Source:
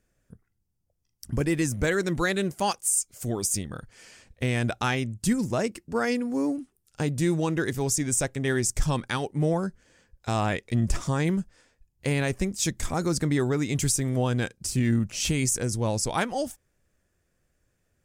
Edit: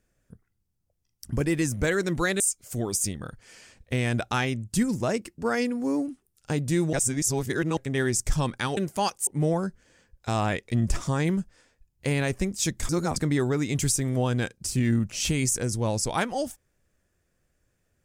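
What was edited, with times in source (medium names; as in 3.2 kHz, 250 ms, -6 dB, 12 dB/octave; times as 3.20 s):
2.40–2.90 s: move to 9.27 s
7.43–8.27 s: reverse
12.89–13.16 s: reverse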